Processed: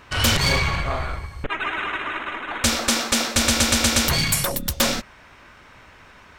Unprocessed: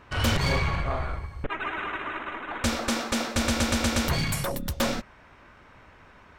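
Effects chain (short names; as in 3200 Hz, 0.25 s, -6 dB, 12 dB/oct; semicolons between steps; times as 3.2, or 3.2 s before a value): high shelf 2300 Hz +10 dB; gain +2.5 dB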